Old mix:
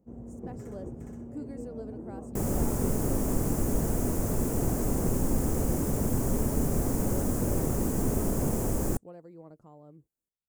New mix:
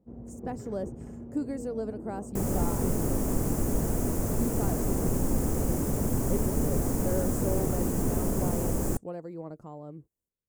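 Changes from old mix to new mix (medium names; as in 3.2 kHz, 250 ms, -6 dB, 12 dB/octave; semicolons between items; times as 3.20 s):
speech +9.0 dB; first sound: add distance through air 150 m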